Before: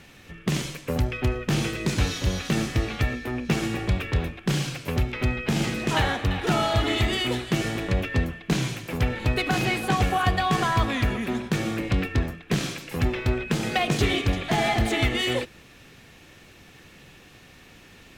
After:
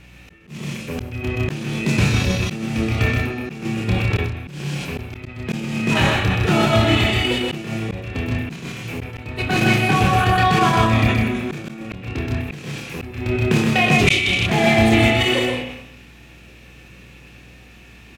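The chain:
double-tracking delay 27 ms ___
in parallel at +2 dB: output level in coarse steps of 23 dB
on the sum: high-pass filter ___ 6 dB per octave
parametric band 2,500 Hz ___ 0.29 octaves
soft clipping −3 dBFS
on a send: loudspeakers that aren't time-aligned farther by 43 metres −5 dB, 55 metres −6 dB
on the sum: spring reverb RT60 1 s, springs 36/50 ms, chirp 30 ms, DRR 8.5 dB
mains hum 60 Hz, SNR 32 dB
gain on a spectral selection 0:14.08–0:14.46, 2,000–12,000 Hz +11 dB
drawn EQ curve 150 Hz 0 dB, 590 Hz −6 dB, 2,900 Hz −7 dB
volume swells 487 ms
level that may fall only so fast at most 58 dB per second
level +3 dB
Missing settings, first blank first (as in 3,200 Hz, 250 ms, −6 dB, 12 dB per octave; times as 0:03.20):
−3 dB, 170 Hz, +8 dB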